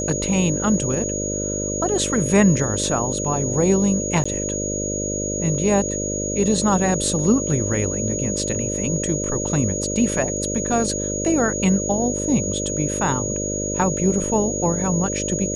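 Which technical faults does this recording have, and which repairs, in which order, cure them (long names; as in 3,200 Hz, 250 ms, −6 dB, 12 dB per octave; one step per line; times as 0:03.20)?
mains buzz 50 Hz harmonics 12 −27 dBFS
whistle 6,700 Hz −26 dBFS
0:04.24–0:04.25: drop-out 15 ms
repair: hum removal 50 Hz, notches 12
notch filter 6,700 Hz, Q 30
repair the gap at 0:04.24, 15 ms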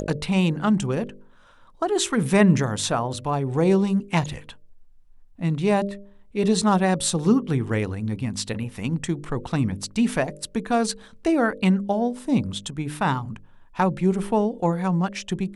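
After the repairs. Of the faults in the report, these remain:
none of them is left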